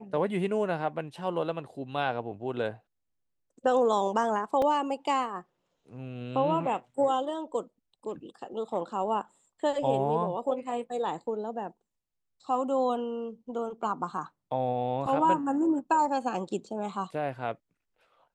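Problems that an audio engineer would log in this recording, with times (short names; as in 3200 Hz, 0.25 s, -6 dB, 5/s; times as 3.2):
4.62 gap 2.9 ms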